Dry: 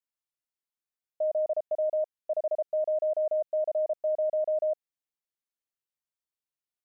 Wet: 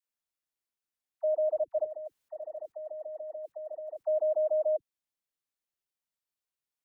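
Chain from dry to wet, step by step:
0:01.81–0:04.03: compressor whose output falls as the input rises −39 dBFS, ratio −1
all-pass dispersion lows, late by 79 ms, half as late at 520 Hz

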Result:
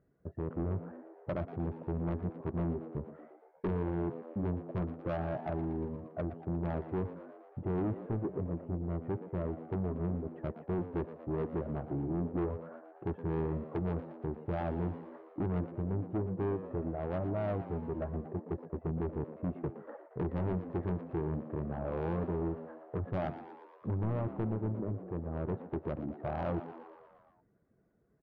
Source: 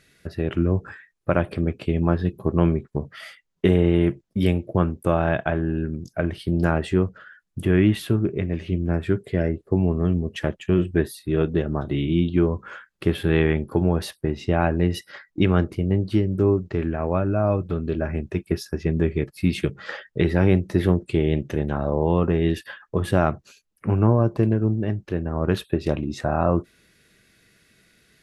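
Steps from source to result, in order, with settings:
low-pass filter 1,000 Hz 24 dB per octave
reverb reduction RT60 0.51 s
high-pass filter 41 Hz 6 dB per octave
soft clipping −21.5 dBFS, distortion −8 dB
on a send: echo with shifted repeats 117 ms, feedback 63%, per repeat +78 Hz, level −13 dB
on the sum: level −7.5 dB

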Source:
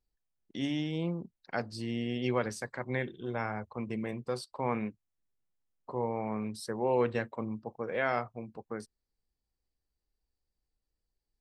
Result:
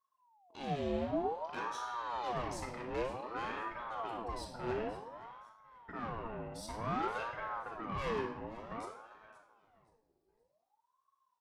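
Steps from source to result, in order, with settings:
0:00.76–0:01.73: low-shelf EQ 120 Hz +11 dB
0:06.09–0:06.53: downward expander −28 dBFS
soft clipping −33 dBFS, distortion −7 dB
repeating echo 524 ms, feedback 30%, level −17 dB
rectangular room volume 3,100 cubic metres, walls furnished, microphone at 5.5 metres
ring modulator whose carrier an LFO sweeps 730 Hz, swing 50%, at 0.54 Hz
level −4.5 dB

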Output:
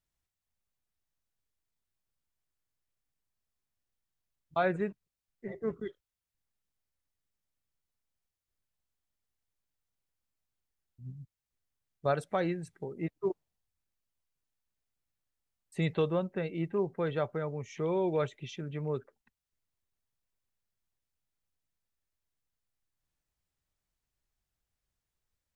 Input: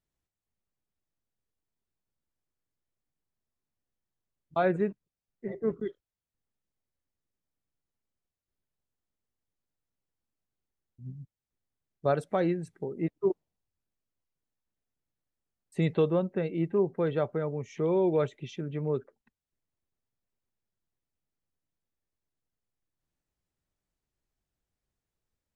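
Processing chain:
parametric band 300 Hz −7 dB 2.5 octaves
level +1.5 dB

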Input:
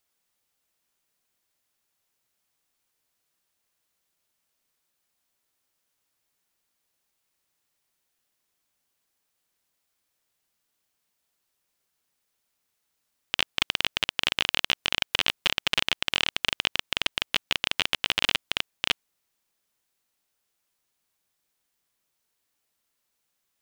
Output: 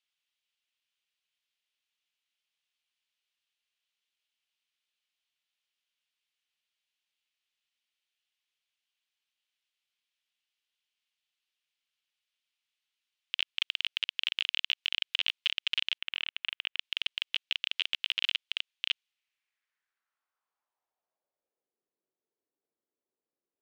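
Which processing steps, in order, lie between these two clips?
0:15.98–0:16.79: three-way crossover with the lows and the highs turned down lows −16 dB, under 320 Hz, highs −20 dB, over 2,900 Hz
in parallel at +2 dB: brickwall limiter −15.5 dBFS, peak gain reduction 11.5 dB
on the sum: band-pass filter sweep 3,000 Hz → 380 Hz, 0:19.06–0:21.85
level −6 dB

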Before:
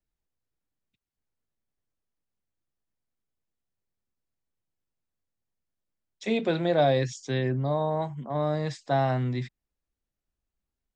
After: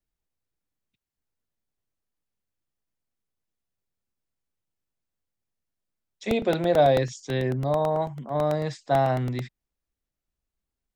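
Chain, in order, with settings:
dynamic equaliser 630 Hz, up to +4 dB, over −34 dBFS, Q 1
regular buffer underruns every 0.11 s, samples 64, repeat, from 0:00.92

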